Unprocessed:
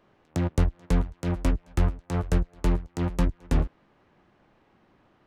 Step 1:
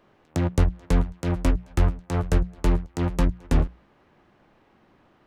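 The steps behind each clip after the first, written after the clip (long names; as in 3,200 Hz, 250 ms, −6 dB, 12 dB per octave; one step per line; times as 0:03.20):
mains-hum notches 60/120/180 Hz
level +3 dB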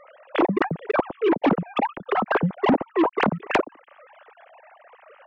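three sine waves on the formant tracks
soft clipping −15 dBFS, distortion −12 dB
low-shelf EQ 330 Hz −4.5 dB
level +4 dB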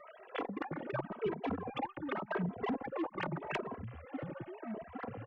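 downward compressor 3 to 1, threshold −35 dBFS, peak gain reduction 14.5 dB
delay with pitch and tempo change per echo 193 ms, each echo −7 semitones, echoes 2, each echo −6 dB
barber-pole flanger 2.7 ms +0.86 Hz
level −1.5 dB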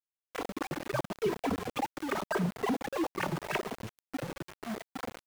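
automatic gain control gain up to 5 dB
centre clipping without the shift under −35.5 dBFS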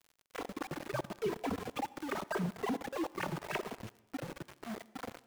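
convolution reverb RT60 0.95 s, pre-delay 57 ms, DRR 19.5 dB
surface crackle 53 per second −44 dBFS
level −4.5 dB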